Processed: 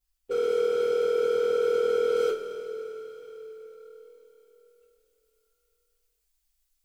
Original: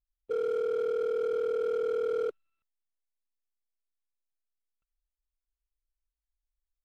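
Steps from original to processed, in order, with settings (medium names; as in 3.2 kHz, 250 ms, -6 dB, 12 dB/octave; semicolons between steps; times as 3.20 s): treble shelf 2.5 kHz +7 dB, from 2.15 s +12 dB; two-slope reverb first 0.24 s, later 4.4 s, from -20 dB, DRR -7 dB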